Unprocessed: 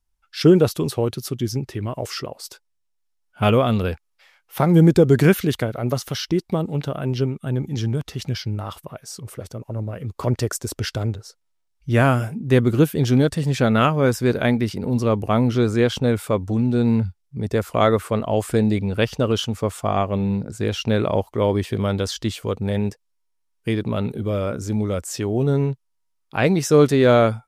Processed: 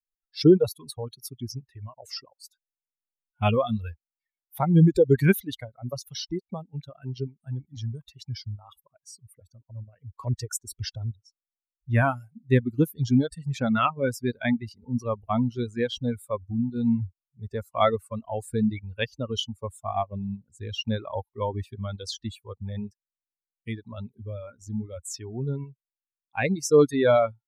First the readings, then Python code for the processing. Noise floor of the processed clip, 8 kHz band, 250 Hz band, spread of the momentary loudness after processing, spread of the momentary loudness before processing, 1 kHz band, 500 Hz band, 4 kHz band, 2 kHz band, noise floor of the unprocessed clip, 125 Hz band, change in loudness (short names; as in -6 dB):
under -85 dBFS, -6.0 dB, -6.5 dB, 18 LU, 14 LU, -5.5 dB, -6.5 dB, -6.0 dB, -6.0 dB, -71 dBFS, -7.5 dB, -6.0 dB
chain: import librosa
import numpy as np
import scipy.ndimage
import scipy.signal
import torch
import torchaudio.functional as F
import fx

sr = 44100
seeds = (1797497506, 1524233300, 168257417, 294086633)

y = fx.bin_expand(x, sr, power=2.0)
y = fx.dereverb_blind(y, sr, rt60_s=1.2)